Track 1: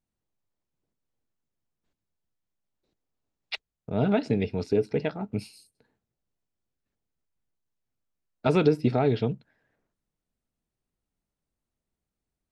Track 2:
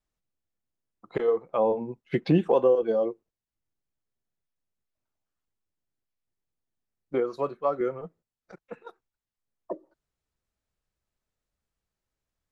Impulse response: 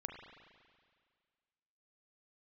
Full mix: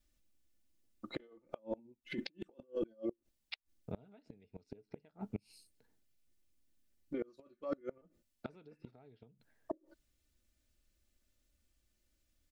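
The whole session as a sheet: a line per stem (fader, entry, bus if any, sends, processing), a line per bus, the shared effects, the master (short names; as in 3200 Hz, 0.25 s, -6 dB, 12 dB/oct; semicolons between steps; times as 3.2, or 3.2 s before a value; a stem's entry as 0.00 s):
-8.5 dB, 0.00 s, no send, dry
0.0 dB, 0.00 s, no send, bell 920 Hz -14 dB 1.3 oct; comb 3.4 ms, depth 77%; negative-ratio compressor -35 dBFS, ratio -1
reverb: off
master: flipped gate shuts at -26 dBFS, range -29 dB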